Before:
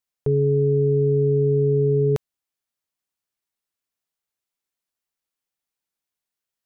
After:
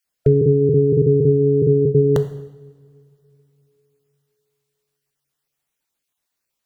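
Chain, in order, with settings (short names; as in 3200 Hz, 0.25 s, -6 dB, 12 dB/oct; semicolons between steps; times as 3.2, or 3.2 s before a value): random spectral dropouts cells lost 20%; two-slope reverb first 0.87 s, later 3.4 s, from -22 dB, DRR 9 dB; gain +8.5 dB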